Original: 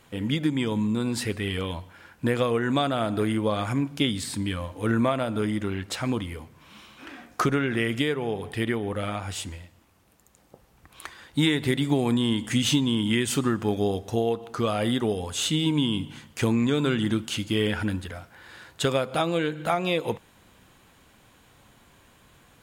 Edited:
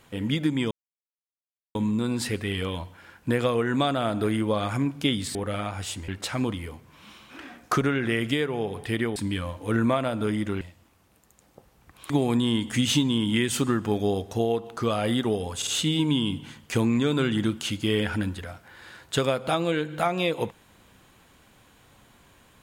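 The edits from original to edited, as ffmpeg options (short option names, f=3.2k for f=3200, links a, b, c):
-filter_complex "[0:a]asplit=9[a][b][c][d][e][f][g][h][i];[a]atrim=end=0.71,asetpts=PTS-STARTPTS,afade=t=out:st=0.706:d=0.004:c=hsin,apad=pad_dur=1.04[j];[b]atrim=start=0.71:end=4.312,asetpts=PTS-STARTPTS,afade=t=in:d=0.004:c=hsin[k];[c]atrim=start=8.838:end=9.572[l];[d]atrim=start=5.758:end=8.842[m];[e]atrim=start=4.308:end=5.762[n];[f]atrim=start=9.568:end=11.062[o];[g]atrim=start=11.868:end=15.392[p];[h]atrim=start=15.338:end=15.392[q];[i]atrim=start=15.338[r];[j][k]concat=n=2:v=0:a=1[s];[s][l]acrossfade=d=0.004:c1=hsin:c2=hsin[t];[t][m]acrossfade=d=0.004:c1=hsin:c2=hsin[u];[u][n]acrossfade=d=0.004:c1=hsin:c2=hsin[v];[v][o]acrossfade=d=0.004:c1=hsin:c2=hsin[w];[w][p]acrossfade=d=0.004:c1=hsin:c2=hsin[x];[x][q]acrossfade=d=0.004:c1=hsin:c2=hsin[y];[y][r]acrossfade=d=0.004:c1=hsin:c2=hsin"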